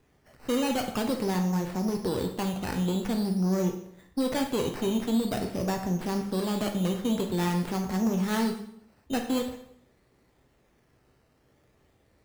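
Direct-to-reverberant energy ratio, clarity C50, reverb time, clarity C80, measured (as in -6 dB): 3.0 dB, 7.5 dB, 0.70 s, 10.5 dB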